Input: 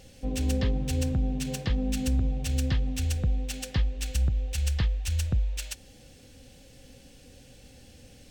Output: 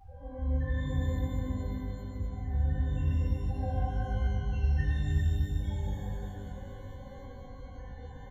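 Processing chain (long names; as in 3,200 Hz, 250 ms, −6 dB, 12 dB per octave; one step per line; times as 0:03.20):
auto-filter low-pass sine 7.1 Hz 570–3,900 Hz
flat-topped bell 1,200 Hz +10.5 dB
downward compressor, threshold −36 dBFS, peak gain reduction 15 dB
soft clipping −33 dBFS, distortion −18 dB
spectral peaks only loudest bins 4
0:01.46–0:02.18: guitar amp tone stack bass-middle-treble 5-5-5
slap from a distant wall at 47 metres, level −7 dB
reverb with rising layers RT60 2.7 s, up +12 semitones, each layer −8 dB, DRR −9.5 dB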